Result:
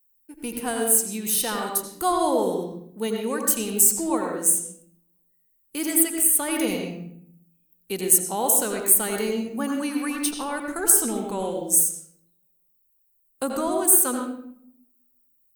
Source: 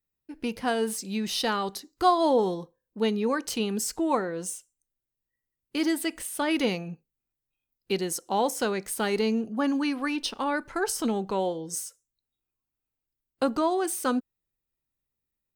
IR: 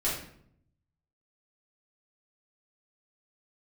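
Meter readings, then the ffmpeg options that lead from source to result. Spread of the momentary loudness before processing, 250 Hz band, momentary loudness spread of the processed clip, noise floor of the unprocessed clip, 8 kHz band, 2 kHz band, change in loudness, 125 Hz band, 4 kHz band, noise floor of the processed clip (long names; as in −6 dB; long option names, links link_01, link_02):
9 LU, +0.5 dB, 14 LU, below −85 dBFS, +15.5 dB, −0.5 dB, +6.5 dB, 0.0 dB, −1.0 dB, −67 dBFS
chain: -filter_complex "[0:a]aexciter=amount=11.3:drive=4.9:freq=7300,asplit=2[link_01][link_02];[1:a]atrim=start_sample=2205,lowpass=5800,adelay=80[link_03];[link_02][link_03]afir=irnorm=-1:irlink=0,volume=-9.5dB[link_04];[link_01][link_04]amix=inputs=2:normalize=0,volume=-2.5dB"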